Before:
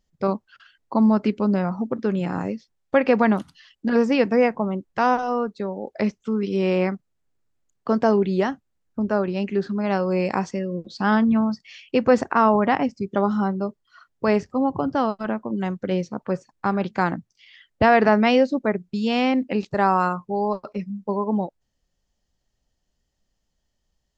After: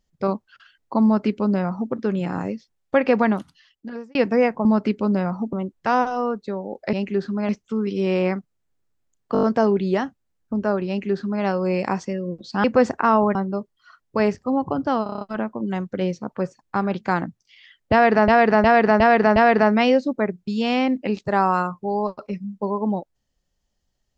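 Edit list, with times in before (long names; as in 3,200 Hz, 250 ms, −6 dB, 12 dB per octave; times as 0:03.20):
0:01.04–0:01.92: duplicate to 0:04.65
0:03.18–0:04.15: fade out
0:07.89: stutter 0.02 s, 6 plays
0:09.34–0:09.90: duplicate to 0:06.05
0:11.10–0:11.96: remove
0:12.67–0:13.43: remove
0:15.11: stutter 0.03 s, 7 plays
0:17.82–0:18.18: repeat, 5 plays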